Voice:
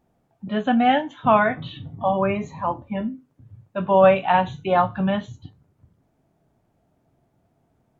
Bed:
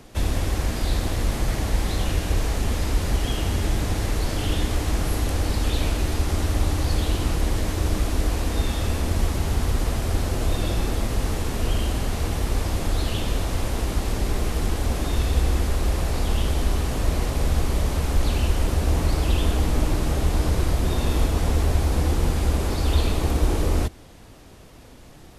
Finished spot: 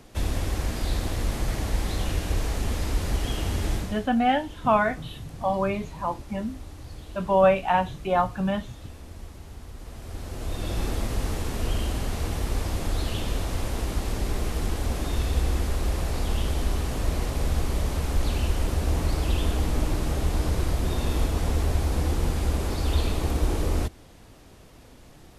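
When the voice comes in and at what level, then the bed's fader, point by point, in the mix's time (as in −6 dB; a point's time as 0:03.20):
3.40 s, −4.0 dB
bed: 0:03.75 −3.5 dB
0:04.10 −19 dB
0:09.74 −19 dB
0:10.83 −3.5 dB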